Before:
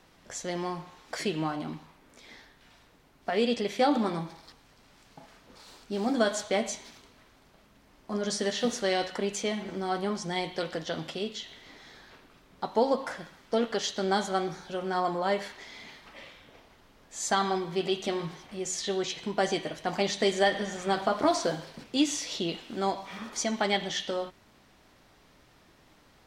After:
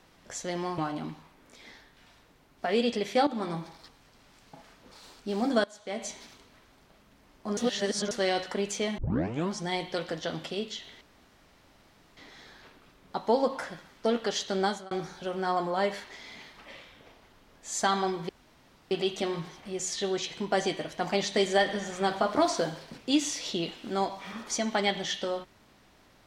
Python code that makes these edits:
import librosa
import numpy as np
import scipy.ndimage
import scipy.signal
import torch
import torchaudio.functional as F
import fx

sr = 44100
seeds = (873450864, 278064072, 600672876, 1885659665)

y = fx.edit(x, sr, fx.cut(start_s=0.78, length_s=0.64),
    fx.fade_in_from(start_s=3.91, length_s=0.39, curve='qsin', floor_db=-13.5),
    fx.fade_in_from(start_s=6.28, length_s=0.51, curve='qua', floor_db=-18.5),
    fx.reverse_span(start_s=8.21, length_s=0.54),
    fx.tape_start(start_s=9.62, length_s=0.53),
    fx.insert_room_tone(at_s=11.65, length_s=1.16),
    fx.fade_out_span(start_s=14.11, length_s=0.28),
    fx.insert_room_tone(at_s=17.77, length_s=0.62), tone=tone)